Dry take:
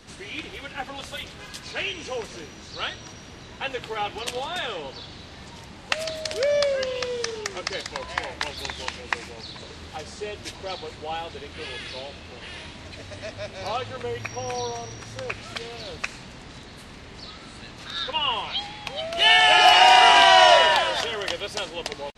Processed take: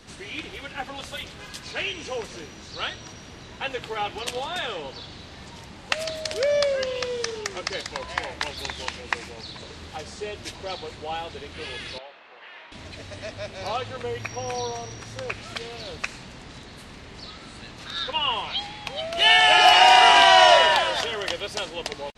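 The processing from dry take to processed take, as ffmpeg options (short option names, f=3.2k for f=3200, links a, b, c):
-filter_complex "[0:a]asettb=1/sr,asplit=3[a][b][c];[a]atrim=end=11.984[d];[b]atrim=start=11.98:end=12.72,asetpts=PTS-STARTPTS,afade=t=in:d=0.004:c=qsin,afade=t=out:st=0.736:d=0.004:c=qsin,highpass=760,lowpass=2k[e];[c]atrim=start=12.716[f];[d][e]acrossfade=d=0.004:c1=hsin:c2=qsin[g];[g][f]acrossfade=d=0.004:c1=qsin:c2=hsin"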